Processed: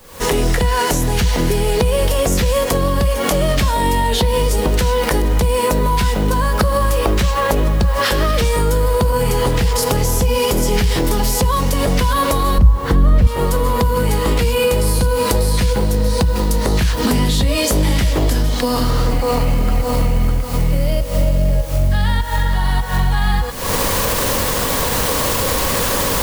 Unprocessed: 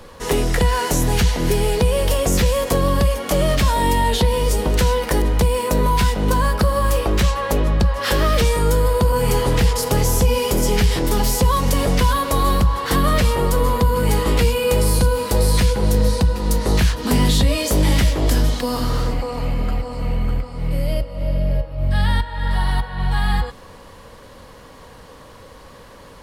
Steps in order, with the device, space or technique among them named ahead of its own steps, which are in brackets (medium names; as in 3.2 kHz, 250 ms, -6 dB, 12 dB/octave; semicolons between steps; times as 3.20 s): 12.58–13.27 s: tilt EQ -3.5 dB/octave; cheap recorder with automatic gain (white noise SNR 29 dB; recorder AGC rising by 70 dB/s); trim -7 dB